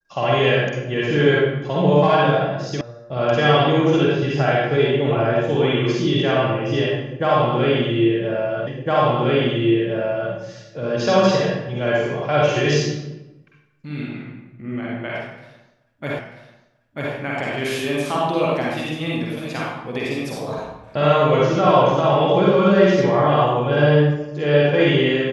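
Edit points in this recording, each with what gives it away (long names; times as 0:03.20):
0:02.81: cut off before it has died away
0:08.67: the same again, the last 1.66 s
0:16.19: the same again, the last 0.94 s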